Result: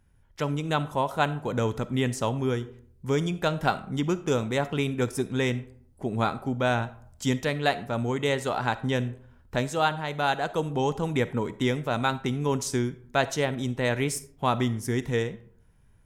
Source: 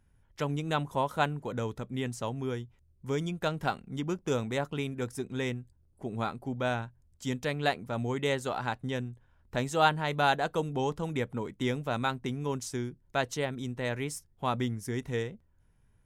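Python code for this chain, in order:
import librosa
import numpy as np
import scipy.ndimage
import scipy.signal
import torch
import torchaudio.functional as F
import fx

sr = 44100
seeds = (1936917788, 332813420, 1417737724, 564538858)

y = fx.rider(x, sr, range_db=10, speed_s=0.5)
y = fx.rev_freeverb(y, sr, rt60_s=0.59, hf_ratio=0.55, predelay_ms=10, drr_db=14.5)
y = y * 10.0 ** (5.0 / 20.0)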